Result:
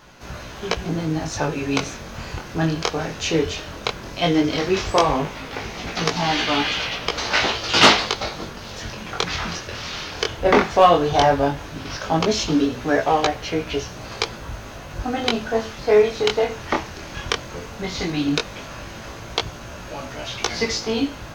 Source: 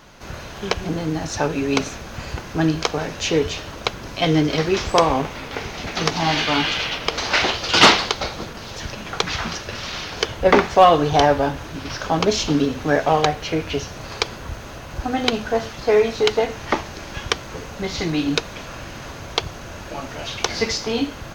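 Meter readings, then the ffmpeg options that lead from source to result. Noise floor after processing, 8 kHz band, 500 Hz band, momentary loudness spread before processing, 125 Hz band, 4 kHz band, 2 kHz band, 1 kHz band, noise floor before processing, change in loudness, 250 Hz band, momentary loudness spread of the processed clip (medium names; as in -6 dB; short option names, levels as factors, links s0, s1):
-37 dBFS, -1.0 dB, -1.0 dB, 16 LU, -1.5 dB, -1.0 dB, -1.0 dB, -1.0 dB, -36 dBFS, -1.0 dB, -0.5 dB, 16 LU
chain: -af "flanger=delay=16.5:depth=8:speed=0.15,volume=1.26"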